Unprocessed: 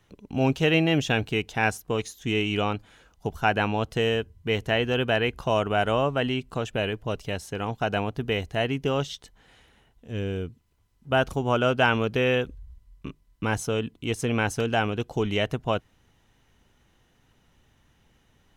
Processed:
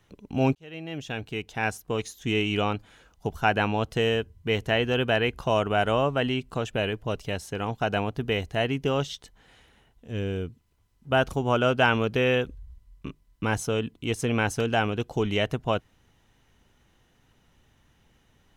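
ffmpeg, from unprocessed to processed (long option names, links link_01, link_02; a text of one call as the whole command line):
ffmpeg -i in.wav -filter_complex "[0:a]asplit=2[link_01][link_02];[link_01]atrim=end=0.55,asetpts=PTS-STARTPTS,afade=type=out:start_time=0.546:duration=0.004:curve=hsin[link_03];[link_02]atrim=start=0.55,asetpts=PTS-STARTPTS,afade=type=in:duration=1.67[link_04];[link_03][link_04]concat=n=2:v=0:a=1" out.wav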